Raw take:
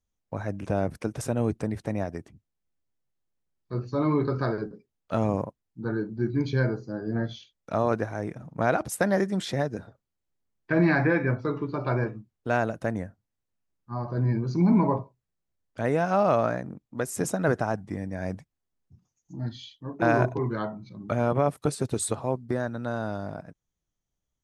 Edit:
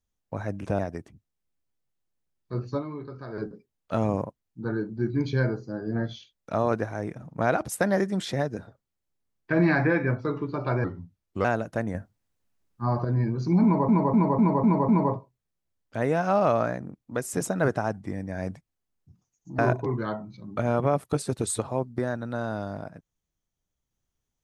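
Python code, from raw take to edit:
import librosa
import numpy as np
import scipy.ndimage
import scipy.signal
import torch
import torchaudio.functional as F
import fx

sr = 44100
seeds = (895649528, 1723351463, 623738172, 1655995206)

y = fx.edit(x, sr, fx.cut(start_s=0.79, length_s=1.2),
    fx.fade_down_up(start_s=3.97, length_s=0.6, db=-13.0, fade_s=0.28, curve='exp'),
    fx.speed_span(start_s=12.04, length_s=0.49, speed=0.81),
    fx.clip_gain(start_s=13.03, length_s=1.1, db=6.5),
    fx.repeat(start_s=14.72, length_s=0.25, count=6),
    fx.cut(start_s=19.42, length_s=0.69), tone=tone)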